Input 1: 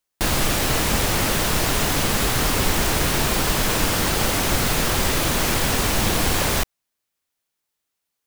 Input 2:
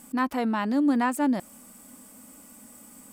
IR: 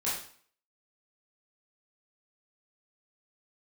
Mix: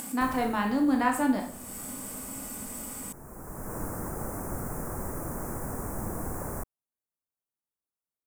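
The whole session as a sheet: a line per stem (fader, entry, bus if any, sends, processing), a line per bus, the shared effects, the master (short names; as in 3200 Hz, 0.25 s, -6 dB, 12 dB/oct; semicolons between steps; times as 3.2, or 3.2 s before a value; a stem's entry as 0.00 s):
-14.5 dB, 0.00 s, no send, Chebyshev band-stop 1200–9000 Hz, order 2; low shelf 330 Hz +10 dB; auto duck -14 dB, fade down 0.80 s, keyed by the second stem
-4.5 dB, 0.00 s, send -5 dB, upward compressor, threshold -28 dBFS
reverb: on, RT60 0.50 s, pre-delay 15 ms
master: low shelf 140 Hz -8.5 dB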